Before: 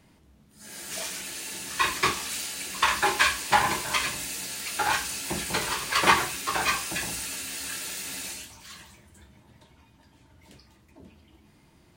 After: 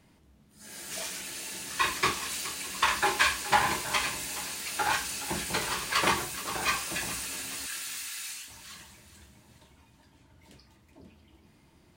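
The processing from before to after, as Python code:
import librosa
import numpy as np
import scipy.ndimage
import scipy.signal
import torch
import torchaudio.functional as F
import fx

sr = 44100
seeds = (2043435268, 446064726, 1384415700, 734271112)

y = fx.peak_eq(x, sr, hz=1600.0, db=-7.0, octaves=2.7, at=(6.08, 6.63))
y = fx.cheby2_highpass(y, sr, hz=430.0, order=4, stop_db=50, at=(7.66, 8.48))
y = fx.echo_feedback(y, sr, ms=420, feedback_pct=45, wet_db=-15)
y = F.gain(torch.from_numpy(y), -2.5).numpy()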